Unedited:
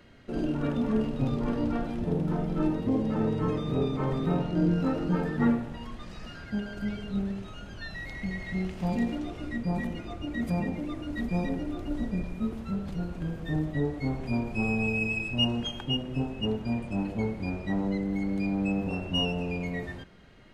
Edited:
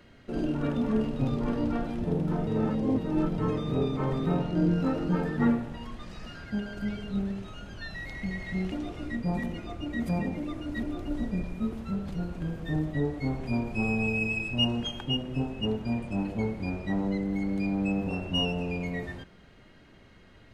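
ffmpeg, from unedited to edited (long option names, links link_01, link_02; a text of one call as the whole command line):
ffmpeg -i in.wav -filter_complex "[0:a]asplit=5[link_01][link_02][link_03][link_04][link_05];[link_01]atrim=end=2.472[link_06];[link_02]atrim=start=2.468:end=3.382,asetpts=PTS-STARTPTS,areverse[link_07];[link_03]atrim=start=3.378:end=8.722[link_08];[link_04]atrim=start=9.128:end=11.242[link_09];[link_05]atrim=start=11.628[link_10];[link_06][link_07]acrossfade=duration=0.004:curve1=hsin:curve2=hsin[link_11];[link_11][link_08]acrossfade=duration=0.004:curve1=hsin:curve2=hsin[link_12];[link_12][link_09]acrossfade=duration=0.004:curve1=hsin:curve2=hsin[link_13];[link_13][link_10]acrossfade=duration=0.004:curve1=hsin:curve2=hsin" out.wav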